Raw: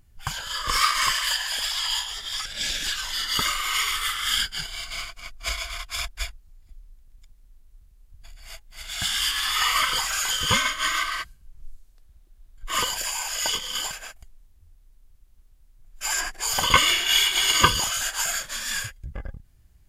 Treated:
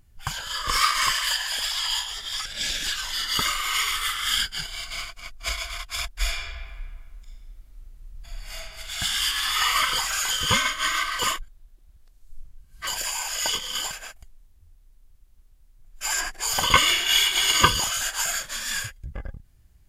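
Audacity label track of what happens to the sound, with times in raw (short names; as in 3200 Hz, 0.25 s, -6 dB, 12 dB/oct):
6.140000	8.670000	reverb throw, RT60 1.7 s, DRR -6.5 dB
11.190000	12.870000	reverse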